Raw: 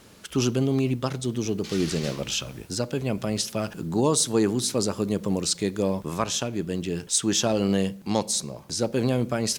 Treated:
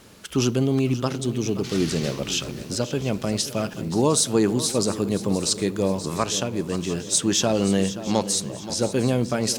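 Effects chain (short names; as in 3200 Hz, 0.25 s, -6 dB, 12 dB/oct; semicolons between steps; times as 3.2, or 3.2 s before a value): swung echo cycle 0.704 s, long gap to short 3:1, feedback 44%, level -14 dB; gain +2 dB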